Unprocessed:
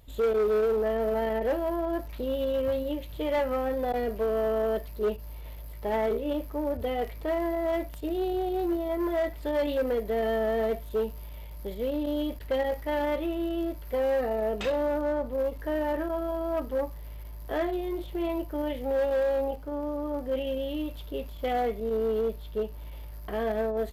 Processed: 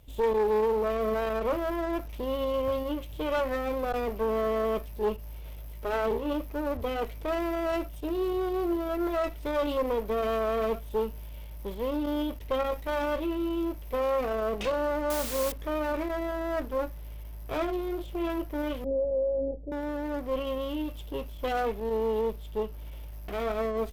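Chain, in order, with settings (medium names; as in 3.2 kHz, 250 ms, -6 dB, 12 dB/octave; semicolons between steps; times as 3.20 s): comb filter that takes the minimum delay 0.35 ms; 15.10–15.52 s: word length cut 6-bit, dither triangular; 18.84–19.72 s: steep low-pass 640 Hz 48 dB/octave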